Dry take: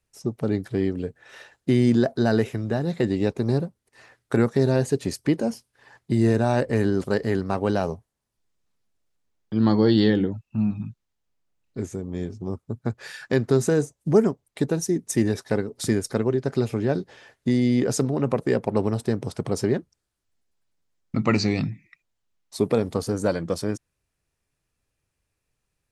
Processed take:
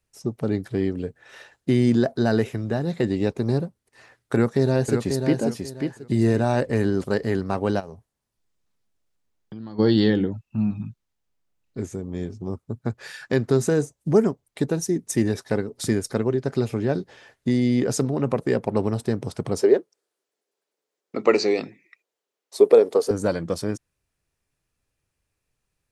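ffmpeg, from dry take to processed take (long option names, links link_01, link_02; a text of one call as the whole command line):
ffmpeg -i in.wav -filter_complex "[0:a]asplit=2[link_01][link_02];[link_02]afade=type=in:start_time=4.34:duration=0.01,afade=type=out:start_time=5.38:duration=0.01,aecho=0:1:540|1080|1620:0.530884|0.132721|0.0331803[link_03];[link_01][link_03]amix=inputs=2:normalize=0,asplit=3[link_04][link_05][link_06];[link_04]afade=type=out:start_time=7.79:duration=0.02[link_07];[link_05]acompressor=threshold=-34dB:ratio=6:attack=3.2:release=140:knee=1:detection=peak,afade=type=in:start_time=7.79:duration=0.02,afade=type=out:start_time=9.78:duration=0.02[link_08];[link_06]afade=type=in:start_time=9.78:duration=0.02[link_09];[link_07][link_08][link_09]amix=inputs=3:normalize=0,asettb=1/sr,asplit=3[link_10][link_11][link_12];[link_10]atrim=end=19.614[link_13];[link_11]atrim=start=19.61:end=23.11,asetpts=PTS-STARTPTS,afade=type=in:duration=0.004:curve=qsin,afade=type=out:start_time=3.496:duration=0.004:curve=qsin,highpass=frequency=430:width_type=q:width=3.4[link_14];[link_12]atrim=start=23.106[link_15];[link_13][link_14]acrossfade=duration=0.004:curve1=hsin:curve2=qsin[link_16];[link_16][link_15]acrossfade=duration=0.004:curve1=qsin:curve2=hsin" out.wav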